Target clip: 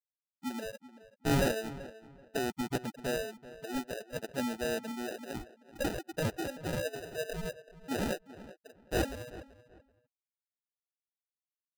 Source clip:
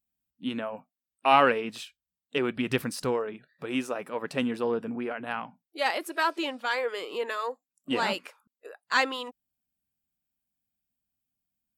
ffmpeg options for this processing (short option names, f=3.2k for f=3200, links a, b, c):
-filter_complex "[0:a]afftfilt=real='re*gte(hypot(re,im),0.0631)':imag='im*gte(hypot(re,im),0.0631)':win_size=1024:overlap=0.75,adynamicequalizer=threshold=0.00708:dfrequency=2100:dqfactor=3.7:tfrequency=2100:tqfactor=3.7:attack=5:release=100:ratio=0.375:range=2.5:mode=boostabove:tftype=bell,acrusher=samples=40:mix=1:aa=0.000001,asoftclip=type=tanh:threshold=-15dB,asplit=2[a][b];[b]adelay=383,lowpass=f=2.6k:p=1,volume=-16dB,asplit=2[c][d];[d]adelay=383,lowpass=f=2.6k:p=1,volume=0.24[e];[a][c][e]amix=inputs=3:normalize=0,volume=-5dB"